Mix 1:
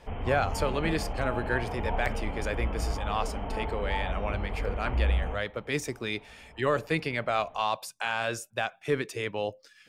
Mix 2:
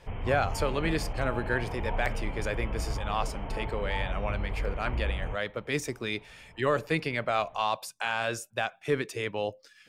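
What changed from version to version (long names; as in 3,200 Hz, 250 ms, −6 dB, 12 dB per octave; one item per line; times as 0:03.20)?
reverb: off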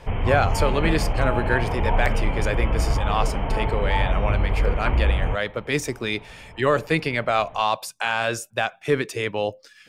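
speech +6.5 dB
background +11.0 dB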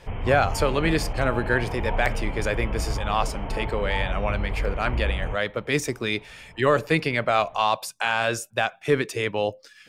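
background −6.0 dB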